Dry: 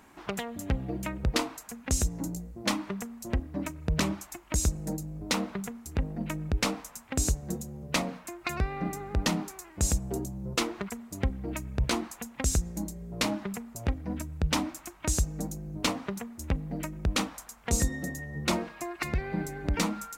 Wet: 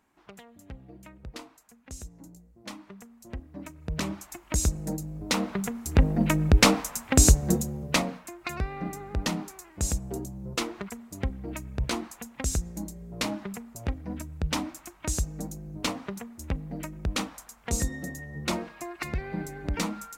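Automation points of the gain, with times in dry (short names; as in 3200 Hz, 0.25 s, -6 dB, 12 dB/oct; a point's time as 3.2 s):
2.42 s -14.5 dB
3.68 s -7 dB
4.45 s +1.5 dB
5.3 s +1.5 dB
6.02 s +10 dB
7.54 s +10 dB
8.3 s -1.5 dB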